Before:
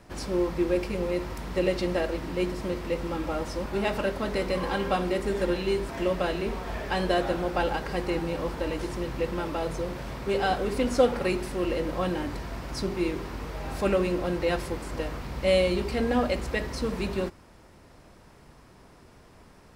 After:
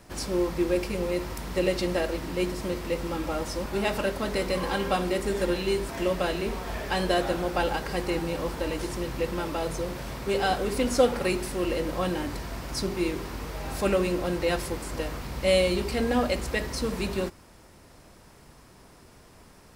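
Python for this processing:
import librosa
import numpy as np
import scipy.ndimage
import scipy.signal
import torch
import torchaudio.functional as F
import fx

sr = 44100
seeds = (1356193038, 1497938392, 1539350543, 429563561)

y = fx.high_shelf(x, sr, hz=5200.0, db=9.0)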